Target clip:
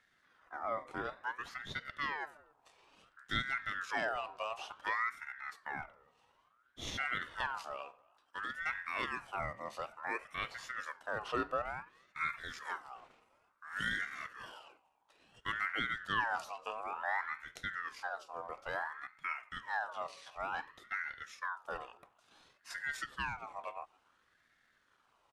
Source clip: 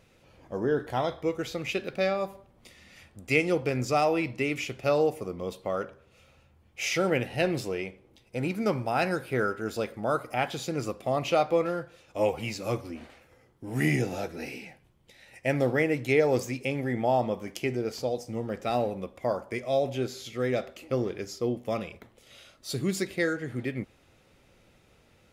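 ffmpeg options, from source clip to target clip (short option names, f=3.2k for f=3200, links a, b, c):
-filter_complex "[0:a]asplit=2[a][b];[b]adelay=270,highpass=300,lowpass=3.4k,asoftclip=type=hard:threshold=-19dB,volume=-27dB[c];[a][c]amix=inputs=2:normalize=0,asetrate=33038,aresample=44100,atempo=1.33484,aeval=exprs='val(0)*sin(2*PI*1300*n/s+1300*0.35/0.57*sin(2*PI*0.57*n/s))':c=same,volume=-8.5dB"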